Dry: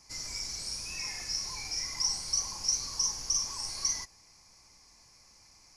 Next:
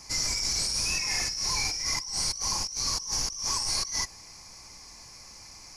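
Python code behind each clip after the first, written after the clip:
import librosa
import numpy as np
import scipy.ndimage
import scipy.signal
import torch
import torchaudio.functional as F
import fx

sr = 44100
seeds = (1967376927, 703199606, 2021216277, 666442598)

y = fx.over_compress(x, sr, threshold_db=-39.0, ratio=-1.0)
y = y * librosa.db_to_amplitude(8.0)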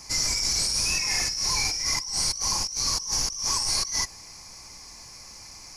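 y = fx.high_shelf(x, sr, hz=9300.0, db=3.5)
y = y * librosa.db_to_amplitude(2.5)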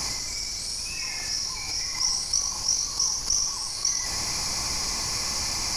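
y = fx.over_compress(x, sr, threshold_db=-37.0, ratio=-1.0)
y = y + 10.0 ** (-5.5 / 20.0) * np.pad(y, (int(101 * sr / 1000.0), 0))[:len(y)]
y = y * librosa.db_to_amplitude(7.0)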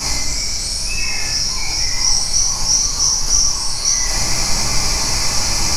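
y = fx.room_shoebox(x, sr, seeds[0], volume_m3=51.0, walls='mixed', distance_m=1.8)
y = y * librosa.db_to_amplitude(1.5)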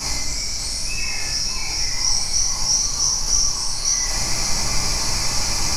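y = x + 10.0 ** (-10.0 / 20.0) * np.pad(x, (int(574 * sr / 1000.0), 0))[:len(x)]
y = y * librosa.db_to_amplitude(-4.5)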